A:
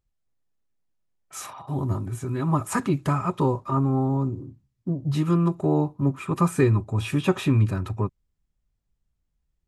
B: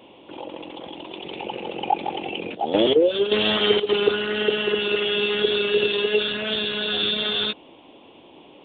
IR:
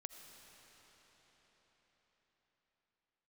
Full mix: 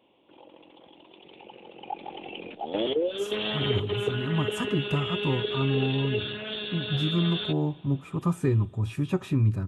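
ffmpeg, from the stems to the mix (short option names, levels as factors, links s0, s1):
-filter_complex "[0:a]lowshelf=f=350:g=8.5,adelay=1850,volume=0.282,asplit=2[s0][s1];[s1]volume=0.15[s2];[1:a]volume=0.299,afade=t=in:st=1.74:d=0.61:silence=0.446684,asplit=2[s3][s4];[s4]volume=0.316[s5];[2:a]atrim=start_sample=2205[s6];[s2][s5]amix=inputs=2:normalize=0[s7];[s7][s6]afir=irnorm=-1:irlink=0[s8];[s0][s3][s8]amix=inputs=3:normalize=0"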